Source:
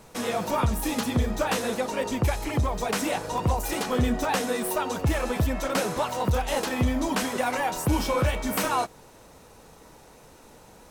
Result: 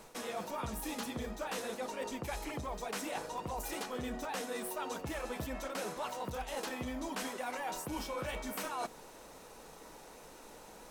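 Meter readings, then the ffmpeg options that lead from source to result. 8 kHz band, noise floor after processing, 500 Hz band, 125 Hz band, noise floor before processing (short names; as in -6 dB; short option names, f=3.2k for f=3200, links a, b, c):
-10.5 dB, -54 dBFS, -12.0 dB, -20.0 dB, -52 dBFS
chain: -af "equalizer=f=88:w=0.87:g=-12,bandreject=f=60:t=h:w=6,bandreject=f=120:t=h:w=6,bandreject=f=180:t=h:w=6,bandreject=f=240:t=h:w=6,areverse,acompressor=threshold=-36dB:ratio=6,areverse,volume=-1dB"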